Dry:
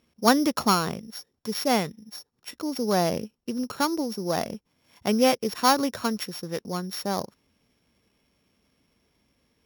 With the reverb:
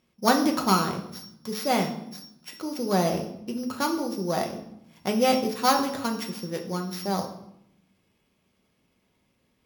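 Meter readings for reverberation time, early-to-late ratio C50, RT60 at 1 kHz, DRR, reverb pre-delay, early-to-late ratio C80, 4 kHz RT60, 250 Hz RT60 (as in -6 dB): 0.80 s, 9.5 dB, 0.75 s, 2.0 dB, 5 ms, 12.5 dB, 0.60 s, 1.1 s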